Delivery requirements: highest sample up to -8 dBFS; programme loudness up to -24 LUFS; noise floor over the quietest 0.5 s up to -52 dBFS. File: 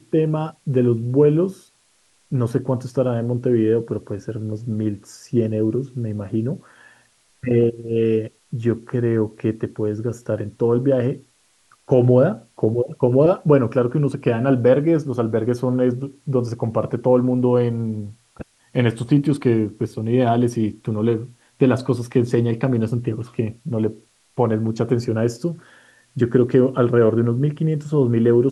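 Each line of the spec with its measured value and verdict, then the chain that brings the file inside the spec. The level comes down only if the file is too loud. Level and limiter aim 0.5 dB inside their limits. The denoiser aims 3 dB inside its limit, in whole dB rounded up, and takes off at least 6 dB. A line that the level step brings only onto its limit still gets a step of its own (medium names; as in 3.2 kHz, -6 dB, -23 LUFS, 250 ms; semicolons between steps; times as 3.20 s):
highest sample -3.5 dBFS: fail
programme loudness -20.5 LUFS: fail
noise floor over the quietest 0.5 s -60 dBFS: pass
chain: trim -4 dB; peak limiter -8.5 dBFS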